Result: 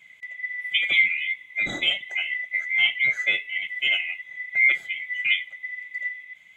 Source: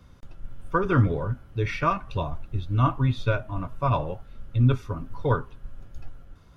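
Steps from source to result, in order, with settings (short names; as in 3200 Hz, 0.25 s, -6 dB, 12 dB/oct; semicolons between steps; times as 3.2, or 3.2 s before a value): band-swap scrambler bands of 2000 Hz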